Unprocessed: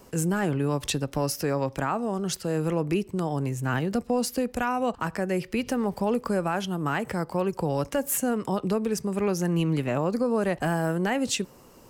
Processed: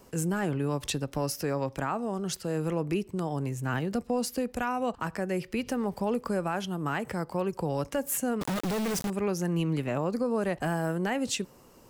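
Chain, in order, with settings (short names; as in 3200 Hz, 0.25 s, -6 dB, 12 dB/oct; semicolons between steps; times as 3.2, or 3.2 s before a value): 8.41–9.1 companded quantiser 2-bit; gain -3.5 dB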